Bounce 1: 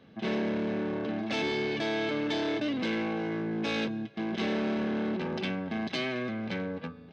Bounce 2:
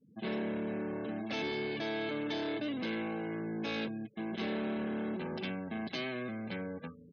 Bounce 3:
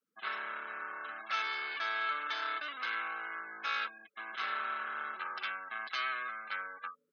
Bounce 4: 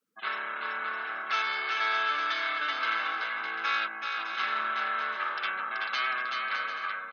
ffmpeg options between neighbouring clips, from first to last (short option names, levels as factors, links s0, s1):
-af "afftfilt=real='re*gte(hypot(re,im),0.00631)':imag='im*gte(hypot(re,im),0.00631)':win_size=1024:overlap=0.75,volume=0.531"
-af "highpass=f=1300:t=q:w=8.1"
-af "aecho=1:1:380|608|744.8|826.9|876.1:0.631|0.398|0.251|0.158|0.1,volume=1.78"